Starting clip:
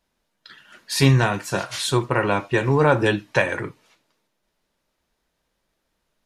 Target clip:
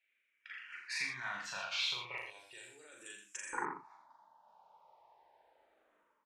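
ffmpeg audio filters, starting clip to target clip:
-filter_complex "[0:a]dynaudnorm=f=350:g=3:m=5.62,alimiter=limit=0.224:level=0:latency=1:release=39,acompressor=threshold=0.0794:ratio=6,asetnsamples=n=441:p=0,asendcmd='2.18 bandpass f 7500;3.53 bandpass f 880',bandpass=f=2300:t=q:w=6.2:csg=0,asplit=2[s0][s1];[s1]adelay=40,volume=0.708[s2];[s0][s2]amix=inputs=2:normalize=0,aecho=1:1:83:0.447,asplit=2[s3][s4];[s4]afreqshift=-0.35[s5];[s3][s5]amix=inputs=2:normalize=1,volume=2.24"

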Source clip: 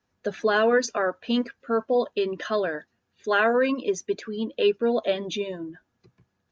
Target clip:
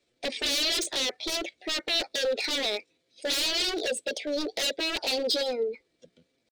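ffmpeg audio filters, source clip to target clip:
-af "asetrate=60591,aresample=44100,atempo=0.727827,aeval=exprs='0.0422*(abs(mod(val(0)/0.0422+3,4)-2)-1)':c=same,equalizer=f=125:t=o:w=1:g=-9,equalizer=f=500:t=o:w=1:g=10,equalizer=f=1000:t=o:w=1:g=-11,equalizer=f=4000:t=o:w=1:g=12"

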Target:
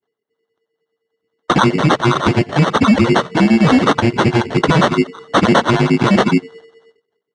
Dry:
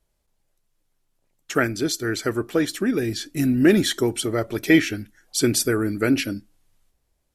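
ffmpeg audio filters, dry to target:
-filter_complex "[0:a]agate=range=0.0224:threshold=0.002:ratio=3:detection=peak,afreqshift=-470,asplit=2[s0][s1];[s1]acompressor=threshold=0.0224:ratio=5,volume=1.26[s2];[s0][s2]amix=inputs=2:normalize=0,asoftclip=type=tanh:threshold=0.237,acrossover=split=660[s3][s4];[s3]aeval=exprs='val(0)*(1-1/2+1/2*cos(2*PI*9.6*n/s))':c=same[s5];[s4]aeval=exprs='val(0)*(1-1/2-1/2*cos(2*PI*9.6*n/s))':c=same[s6];[s5][s6]amix=inputs=2:normalize=0,acrusher=samples=18:mix=1:aa=0.000001,volume=10,asoftclip=hard,volume=0.1,highpass=180,lowpass=4000,acontrast=83,alimiter=level_in=5.31:limit=0.891:release=50:level=0:latency=1,volume=0.891" -ar 22050 -c:a libvorbis -b:a 64k

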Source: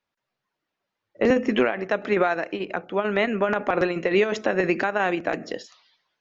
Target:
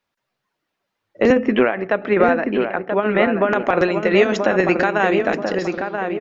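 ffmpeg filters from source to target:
-filter_complex "[0:a]asettb=1/sr,asplit=3[s0][s1][s2];[s0]atrim=end=1.324[s3];[s1]atrim=start=1.32:end=3.52,asetpts=PTS-STARTPTS,afade=t=in:d=0.004:c=qsin,afade=t=out:st=2.196:d=0.004:c=qsin,lowpass=2700[s4];[s2]atrim=start=3.516[s5];[s3][s4]acrossfade=d=0.004:c1=hsin:c2=qsin[s6];[s6][s5]acrossfade=d=0.004:c1=qsin:c2=hsin,asplit=2[s7][s8];[s8]adelay=982,lowpass=f=1700:p=1,volume=0.562,asplit=2[s9][s10];[s10]adelay=982,lowpass=f=1700:p=1,volume=0.43,asplit=2[s11][s12];[s12]adelay=982,lowpass=f=1700:p=1,volume=0.43,asplit=2[s13][s14];[s14]adelay=982,lowpass=f=1700:p=1,volume=0.43,asplit=2[s15][s16];[s16]adelay=982,lowpass=f=1700:p=1,volume=0.43[s17];[s7][s9][s11][s13][s15][s17]amix=inputs=6:normalize=0,volume=1.78"

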